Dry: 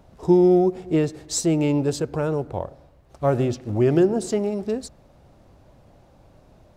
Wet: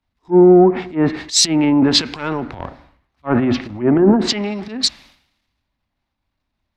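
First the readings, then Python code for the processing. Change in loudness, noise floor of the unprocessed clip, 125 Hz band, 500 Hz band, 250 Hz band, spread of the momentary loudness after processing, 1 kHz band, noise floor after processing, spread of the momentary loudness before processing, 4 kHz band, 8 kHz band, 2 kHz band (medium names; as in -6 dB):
+6.5 dB, -54 dBFS, +1.5 dB, +4.5 dB, +7.0 dB, 15 LU, +7.5 dB, -76 dBFS, 11 LU, +19.0 dB, +10.0 dB, +10.5 dB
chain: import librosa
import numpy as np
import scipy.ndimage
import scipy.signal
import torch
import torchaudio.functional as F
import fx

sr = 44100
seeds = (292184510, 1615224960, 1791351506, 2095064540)

y = fx.graphic_eq(x, sr, hz=(125, 250, 500, 1000, 2000, 4000, 8000), db=(-6, 12, -6, 10, 12, 7, -7))
y = fx.env_lowpass_down(y, sr, base_hz=870.0, full_db=-10.0)
y = fx.high_shelf(y, sr, hz=2200.0, db=8.5)
y = fx.transient(y, sr, attack_db=-11, sustain_db=9)
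y = fx.band_widen(y, sr, depth_pct=100)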